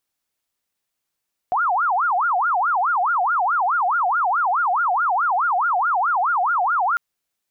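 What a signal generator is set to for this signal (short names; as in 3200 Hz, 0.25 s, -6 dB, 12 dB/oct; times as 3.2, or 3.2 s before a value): siren wail 706–1430 Hz 4.7/s sine -16.5 dBFS 5.45 s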